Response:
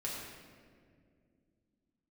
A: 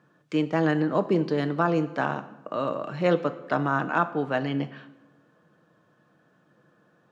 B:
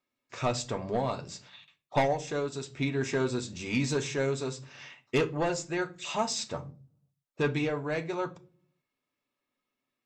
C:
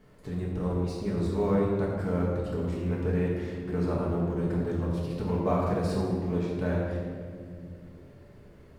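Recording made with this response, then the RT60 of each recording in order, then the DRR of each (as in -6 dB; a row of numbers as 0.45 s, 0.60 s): C; 1.0 s, no single decay rate, 2.1 s; 8.5 dB, 5.0 dB, -5.5 dB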